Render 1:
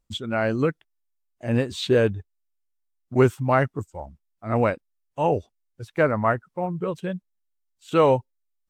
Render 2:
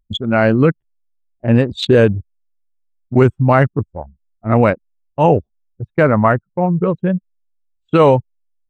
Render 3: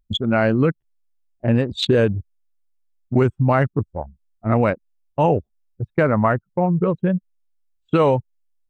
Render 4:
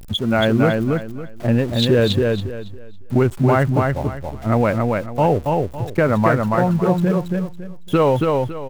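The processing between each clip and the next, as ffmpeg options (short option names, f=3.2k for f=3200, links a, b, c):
-af "equalizer=f=170:w=1.2:g=4.5,anlmdn=63.1,alimiter=level_in=10.5dB:limit=-1dB:release=50:level=0:latency=1,volume=-1dB"
-af "acompressor=threshold=-17dB:ratio=2"
-af "aeval=exprs='val(0)+0.5*0.0266*sgn(val(0))':c=same,aecho=1:1:278|556|834|1112:0.708|0.184|0.0479|0.0124"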